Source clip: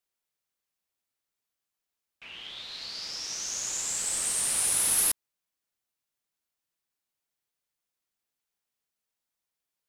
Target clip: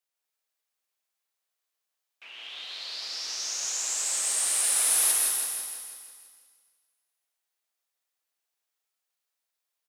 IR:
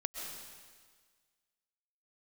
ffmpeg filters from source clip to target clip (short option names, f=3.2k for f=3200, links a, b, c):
-filter_complex "[0:a]highpass=470,aecho=1:1:165|330|495|660|825|990|1155:0.473|0.265|0.148|0.0831|0.0465|0.0261|0.0146[a];[1:a]atrim=start_sample=2205[b];[a][b]afir=irnorm=-1:irlink=0"